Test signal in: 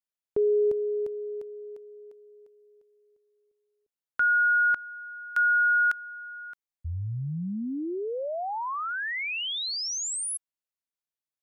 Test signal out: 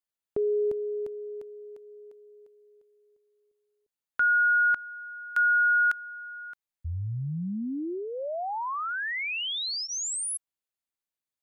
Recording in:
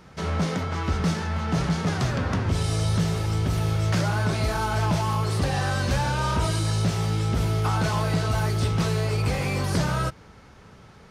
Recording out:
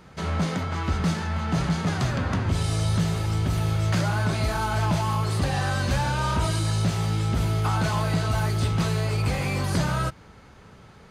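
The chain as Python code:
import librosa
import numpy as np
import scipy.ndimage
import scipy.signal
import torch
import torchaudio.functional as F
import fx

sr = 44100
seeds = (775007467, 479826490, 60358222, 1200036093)

y = fx.notch(x, sr, hz=5500.0, q=12.0)
y = fx.dynamic_eq(y, sr, hz=450.0, q=3.5, threshold_db=-47.0, ratio=3.0, max_db=-4)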